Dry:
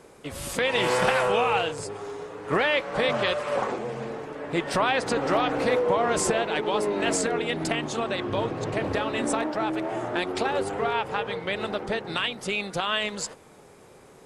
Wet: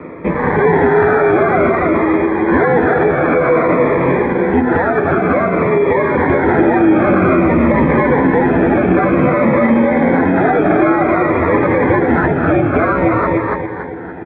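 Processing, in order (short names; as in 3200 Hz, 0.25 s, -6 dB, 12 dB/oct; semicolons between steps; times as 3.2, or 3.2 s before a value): sample-and-hold 15×; mistuned SSB -88 Hz 200–2200 Hz; notches 50/100/150/200/250/300/350/400 Hz; feedback echo 0.285 s, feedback 40%, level -7.5 dB; 4.23–6.3 compressor 6:1, threshold -32 dBFS, peak gain reduction 13 dB; doubler 12 ms -6 dB; echo 0.201 s -16 dB; maximiser +24.5 dB; cascading phaser falling 0.53 Hz; gain -1.5 dB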